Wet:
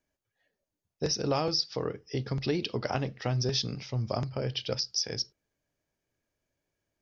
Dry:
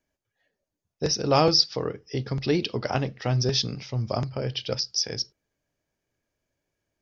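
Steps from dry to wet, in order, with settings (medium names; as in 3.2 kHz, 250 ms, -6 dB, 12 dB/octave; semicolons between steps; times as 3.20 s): compression 6:1, threshold -22 dBFS, peak gain reduction 8.5 dB; trim -2.5 dB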